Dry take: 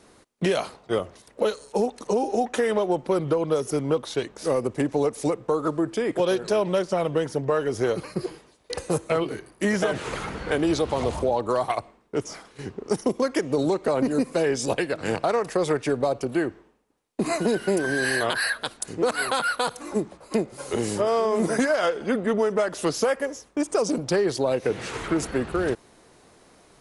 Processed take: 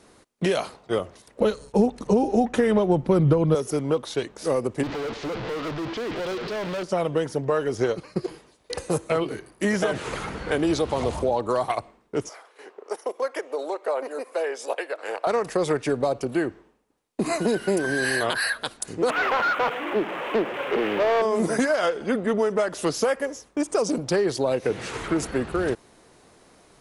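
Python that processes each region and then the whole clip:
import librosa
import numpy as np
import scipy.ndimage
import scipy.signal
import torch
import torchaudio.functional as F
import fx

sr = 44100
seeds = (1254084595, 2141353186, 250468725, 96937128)

y = fx.chain(x, sr, fx.gate_hold(open_db=-35.0, close_db=-39.0, hold_ms=71.0, range_db=-21, attack_ms=1.4, release_ms=100.0),
    fx.bass_treble(bass_db=14, treble_db=-4), at=(1.4, 3.55))
y = fx.chain(y, sr, fx.delta_mod(bps=64000, step_db=-25.5),
    fx.lowpass(hz=4500.0, slope=24),
    fx.overload_stage(gain_db=27.0), at=(4.83, 6.83))
y = fx.chain(y, sr, fx.cheby1_lowpass(hz=6900.0, order=2),
    fx.transient(attack_db=3, sustain_db=-6), at=(7.75, 8.28))
y = fx.chain(y, sr, fx.highpass(hz=480.0, slope=24),
    fx.peak_eq(hz=6100.0, db=-9.5, octaves=2.2), at=(12.29, 15.27))
y = fx.chain(y, sr, fx.delta_mod(bps=16000, step_db=-31.0),
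    fx.highpass(hz=320.0, slope=12),
    fx.leveller(passes=2), at=(19.1, 21.22))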